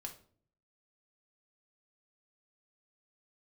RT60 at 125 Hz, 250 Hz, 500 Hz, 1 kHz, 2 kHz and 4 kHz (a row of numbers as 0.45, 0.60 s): 0.90, 0.70, 0.60, 0.45, 0.35, 0.35 s